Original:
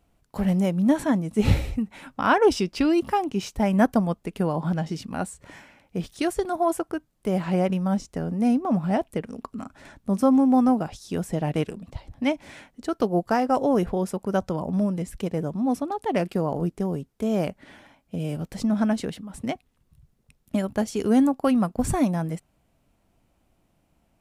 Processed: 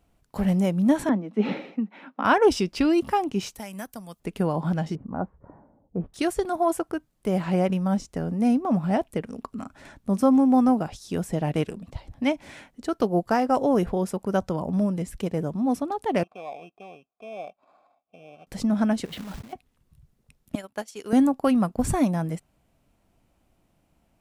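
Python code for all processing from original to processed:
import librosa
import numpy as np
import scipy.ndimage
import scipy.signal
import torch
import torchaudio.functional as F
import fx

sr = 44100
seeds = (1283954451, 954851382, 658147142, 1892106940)

y = fx.chain(x, sr, fx.steep_highpass(hz=190.0, slope=48),
    fx.air_absorb(metres=290.0),
    fx.notch(hz=4600.0, q=28.0), at=(1.09, 2.25))
y = fx.chain(y, sr, fx.pre_emphasis(coefficient=0.9),
    fx.band_squash(depth_pct=100), at=(3.55, 4.2))
y = fx.chain(y, sr, fx.lowpass(hz=1200.0, slope=24),
    fx.env_lowpass(base_hz=460.0, full_db=-26.0), at=(4.95, 6.14))
y = fx.chain(y, sr, fx.high_shelf(hz=4500.0, db=-9.0),
    fx.sample_hold(seeds[0], rate_hz=2900.0, jitter_pct=0),
    fx.vowel_filter(vowel='a'), at=(16.23, 18.47))
y = fx.chain(y, sr, fx.lowpass(hz=3900.0, slope=24),
    fx.over_compress(threshold_db=-40.0, ratio=-1.0),
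    fx.quant_companded(bits=4), at=(19.05, 19.53))
y = fx.chain(y, sr, fx.highpass(hz=970.0, slope=6),
    fx.transient(attack_db=1, sustain_db=-5),
    fx.upward_expand(threshold_db=-42.0, expansion=1.5), at=(20.55, 21.13))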